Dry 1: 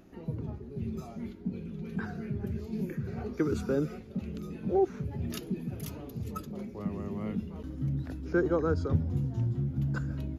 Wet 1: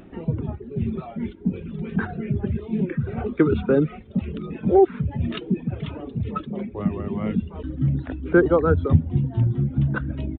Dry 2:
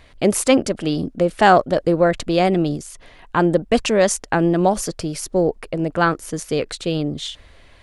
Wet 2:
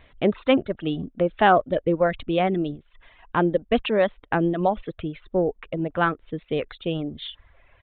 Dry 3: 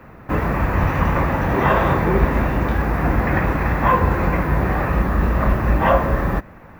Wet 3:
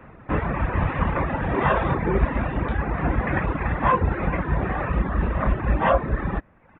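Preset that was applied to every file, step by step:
reverb removal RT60 0.95 s; downsampling 8000 Hz; match loudness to -24 LUFS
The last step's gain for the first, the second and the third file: +11.5, -4.0, -2.5 dB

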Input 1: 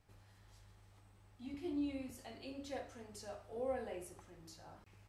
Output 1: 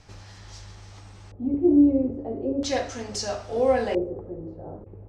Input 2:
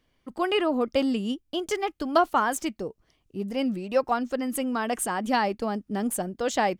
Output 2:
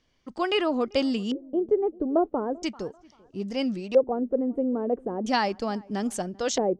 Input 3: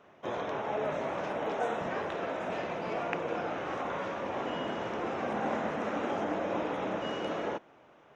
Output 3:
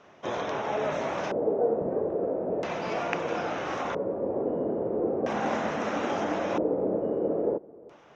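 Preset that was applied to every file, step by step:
darkening echo 0.39 s, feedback 33%, low-pass 1000 Hz, level -23.5 dB; LFO low-pass square 0.38 Hz 460–5900 Hz; normalise peaks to -9 dBFS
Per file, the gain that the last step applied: +18.5, -0.5, +3.5 dB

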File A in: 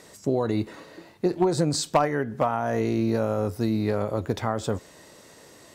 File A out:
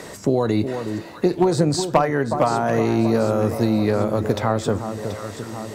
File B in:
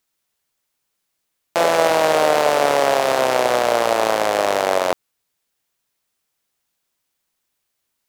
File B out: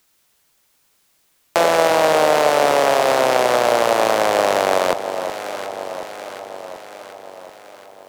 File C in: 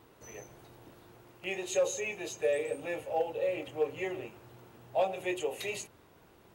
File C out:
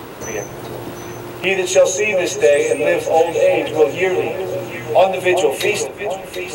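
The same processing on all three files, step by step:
echo with dull and thin repeats by turns 0.366 s, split 1200 Hz, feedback 67%, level -10 dB; three-band squash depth 40%; normalise peaks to -1.5 dBFS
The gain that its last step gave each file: +5.0, +1.0, +18.0 dB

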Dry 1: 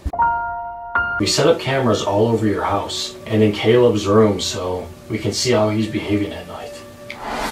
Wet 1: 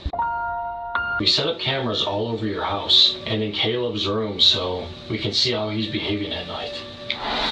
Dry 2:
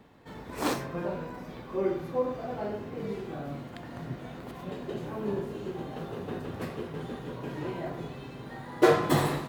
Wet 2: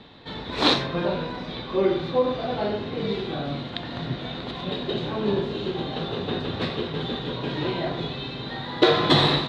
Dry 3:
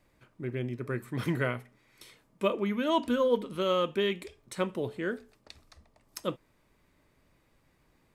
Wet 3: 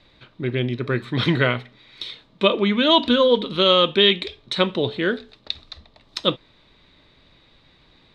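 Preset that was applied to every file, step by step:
compressor 6:1, threshold -22 dBFS; synth low-pass 3800 Hz, resonance Q 7.6; normalise peaks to -2 dBFS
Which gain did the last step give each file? 0.0, +7.5, +10.5 dB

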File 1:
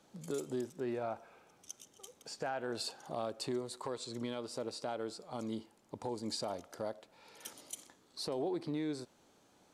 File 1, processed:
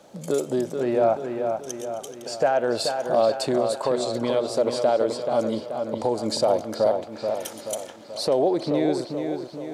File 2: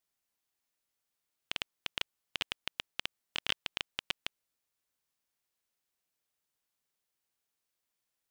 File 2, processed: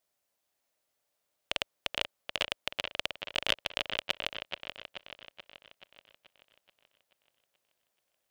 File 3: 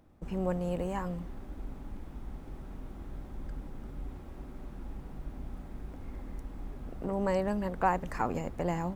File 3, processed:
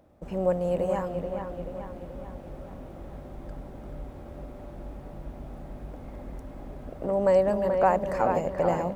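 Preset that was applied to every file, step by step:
HPF 41 Hz 6 dB/oct; bell 590 Hz +10.5 dB 0.63 oct; on a send: dark delay 0.431 s, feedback 53%, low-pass 3700 Hz, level -6 dB; on the sum: normalise peaks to -9 dBFS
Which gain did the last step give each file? +11.0, +3.5, +1.0 dB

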